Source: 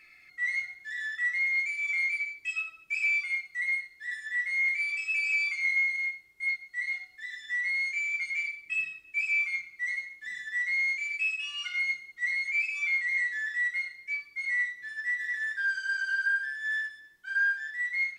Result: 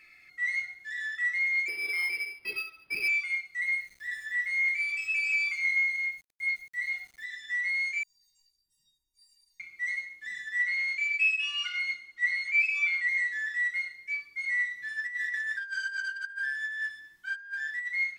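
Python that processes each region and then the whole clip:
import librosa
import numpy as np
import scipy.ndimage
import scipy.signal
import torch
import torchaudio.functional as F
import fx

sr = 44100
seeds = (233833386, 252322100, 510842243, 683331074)

y = fx.chain(x, sr, fx.high_shelf(hz=5500.0, db=7.5),
    fx.resample_linear(factor=6), at=(1.68, 3.08))
y = fx.chain(y, sr, fx.low_shelf(hz=130.0, db=10.5),
    fx.sample_gate(floor_db=-54.0), at=(3.61, 7.25))
y = fx.chain(y, sr, fx.cheby2_bandstop(low_hz=790.0, high_hz=2700.0, order=4, stop_db=40),
    fx.leveller(passes=3),
    fx.comb_fb(f0_hz=930.0, decay_s=0.27, harmonics='all', damping=0.0, mix_pct=100), at=(8.03, 9.6))
y = fx.chain(y, sr, fx.lowpass(hz=3600.0, slope=6),
    fx.tilt_shelf(db=-4.0, hz=780.0),
    fx.comb(ms=3.5, depth=0.41), at=(10.59, 13.09))
y = fx.chain(y, sr, fx.peak_eq(hz=490.0, db=-11.0, octaves=0.5),
    fx.over_compress(threshold_db=-33.0, ratio=-0.5), at=(14.71, 17.88))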